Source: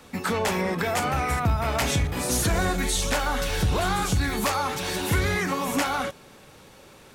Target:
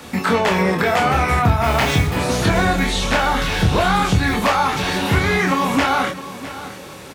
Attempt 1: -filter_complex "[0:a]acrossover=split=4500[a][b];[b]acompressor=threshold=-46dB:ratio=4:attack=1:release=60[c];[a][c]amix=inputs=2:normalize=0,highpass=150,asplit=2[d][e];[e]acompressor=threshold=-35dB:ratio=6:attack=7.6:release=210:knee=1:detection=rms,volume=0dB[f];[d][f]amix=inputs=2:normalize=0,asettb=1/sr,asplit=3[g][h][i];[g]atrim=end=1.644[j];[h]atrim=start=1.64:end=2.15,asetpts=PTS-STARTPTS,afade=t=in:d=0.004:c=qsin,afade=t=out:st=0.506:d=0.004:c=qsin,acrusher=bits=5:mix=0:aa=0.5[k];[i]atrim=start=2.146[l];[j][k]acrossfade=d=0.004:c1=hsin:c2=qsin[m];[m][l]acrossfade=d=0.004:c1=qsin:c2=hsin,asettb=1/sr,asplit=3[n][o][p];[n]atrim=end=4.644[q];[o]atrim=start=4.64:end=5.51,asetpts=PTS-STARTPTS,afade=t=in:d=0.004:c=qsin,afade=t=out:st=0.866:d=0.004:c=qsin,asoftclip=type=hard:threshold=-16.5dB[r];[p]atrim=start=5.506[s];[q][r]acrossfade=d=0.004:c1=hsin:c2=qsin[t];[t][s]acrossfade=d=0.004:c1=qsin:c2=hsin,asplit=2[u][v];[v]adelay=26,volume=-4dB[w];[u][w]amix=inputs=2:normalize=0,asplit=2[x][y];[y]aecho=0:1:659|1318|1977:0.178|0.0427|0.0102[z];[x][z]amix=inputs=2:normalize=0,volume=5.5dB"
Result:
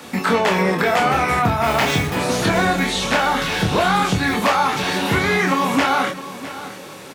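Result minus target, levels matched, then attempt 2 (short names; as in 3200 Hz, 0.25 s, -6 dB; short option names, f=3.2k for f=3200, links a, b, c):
125 Hz band -4.0 dB
-filter_complex "[0:a]acrossover=split=4500[a][b];[b]acompressor=threshold=-46dB:ratio=4:attack=1:release=60[c];[a][c]amix=inputs=2:normalize=0,highpass=61,asplit=2[d][e];[e]acompressor=threshold=-35dB:ratio=6:attack=7.6:release=210:knee=1:detection=rms,volume=0dB[f];[d][f]amix=inputs=2:normalize=0,asettb=1/sr,asplit=3[g][h][i];[g]atrim=end=1.644[j];[h]atrim=start=1.64:end=2.15,asetpts=PTS-STARTPTS,afade=t=in:d=0.004:c=qsin,afade=t=out:st=0.506:d=0.004:c=qsin,acrusher=bits=5:mix=0:aa=0.5[k];[i]atrim=start=2.146[l];[j][k]acrossfade=d=0.004:c1=hsin:c2=qsin[m];[m][l]acrossfade=d=0.004:c1=qsin:c2=hsin,asettb=1/sr,asplit=3[n][o][p];[n]atrim=end=4.644[q];[o]atrim=start=4.64:end=5.51,asetpts=PTS-STARTPTS,afade=t=in:d=0.004:c=qsin,afade=t=out:st=0.866:d=0.004:c=qsin,asoftclip=type=hard:threshold=-16.5dB[r];[p]atrim=start=5.506[s];[q][r]acrossfade=d=0.004:c1=hsin:c2=qsin[t];[t][s]acrossfade=d=0.004:c1=qsin:c2=hsin,asplit=2[u][v];[v]adelay=26,volume=-4dB[w];[u][w]amix=inputs=2:normalize=0,asplit=2[x][y];[y]aecho=0:1:659|1318|1977:0.178|0.0427|0.0102[z];[x][z]amix=inputs=2:normalize=0,volume=5.5dB"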